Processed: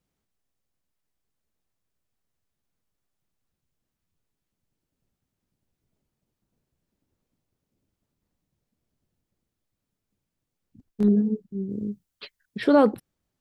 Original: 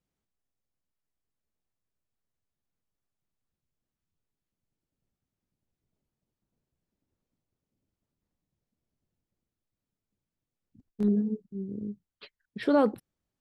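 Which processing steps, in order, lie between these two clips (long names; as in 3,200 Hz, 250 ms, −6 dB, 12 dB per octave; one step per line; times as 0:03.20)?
0:11.70–0:12.60: high-shelf EQ 4,400 Hz +7.5 dB
regular buffer underruns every 0.93 s, samples 512, repeat, from 0:00.32
level +5.5 dB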